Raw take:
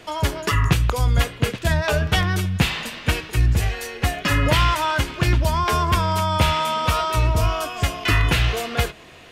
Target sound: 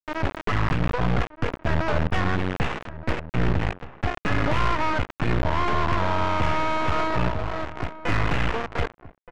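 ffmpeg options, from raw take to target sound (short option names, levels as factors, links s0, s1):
-filter_complex "[0:a]highpass=f=70:p=1,aeval=exprs='max(val(0),0)':c=same,acrusher=bits=3:mix=0:aa=0.000001,lowpass=2700,adynamicsmooth=sensitivity=1:basefreq=1800,asoftclip=type=tanh:threshold=0.119,asettb=1/sr,asplit=3[s0][s1][s2];[s0]atrim=end=7.284[s3];[s1]atrim=start=7.28:end=8,asetpts=PTS-STARTPTS,afade=t=in:d=0.004:c=qsin,afade=t=out:st=0.716:d=0.004:c=qsin,acompressor=threshold=0.0398:ratio=6[s4];[s2]atrim=start=7.996[s5];[s3][s4]acrossfade=d=0.004:c1=hsin:c2=qsin[s6];[s6][s5]acrossfade=d=0.004:c1=qsin:c2=hsin,asplit=2[s7][s8];[s8]adelay=1224,volume=0.2,highshelf=f=4000:g=-27.6[s9];[s7][s9]amix=inputs=2:normalize=0,volume=1.78"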